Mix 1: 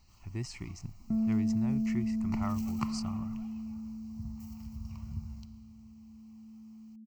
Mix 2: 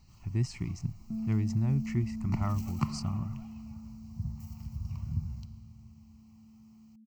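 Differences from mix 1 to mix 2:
second sound -12.0 dB; master: add peaking EQ 140 Hz +9.5 dB 1.7 oct

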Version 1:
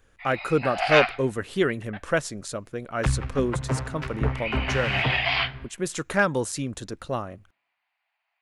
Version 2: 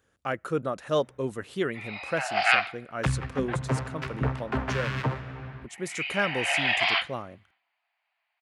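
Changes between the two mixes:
speech -5.5 dB; first sound: entry +1.55 s; master: add high-pass 93 Hz

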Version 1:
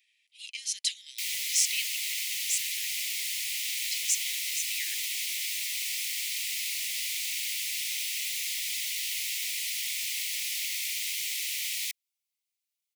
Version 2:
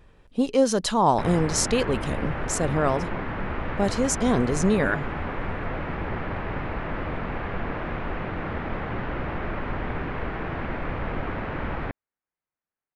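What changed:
background: add low-pass 2.1 kHz 24 dB/octave; master: remove steep high-pass 2 kHz 96 dB/octave

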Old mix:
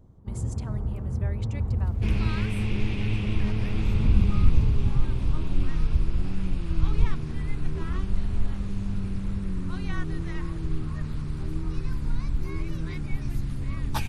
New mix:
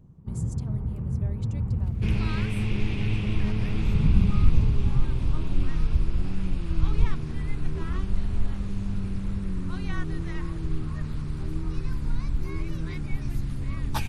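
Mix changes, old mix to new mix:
speech: add peaking EQ 1.5 kHz -12.5 dB 2 oct; first sound: add fifteen-band graphic EQ 160 Hz +11 dB, 630 Hz -4 dB, 2.5 kHz +7 dB; reverb: off

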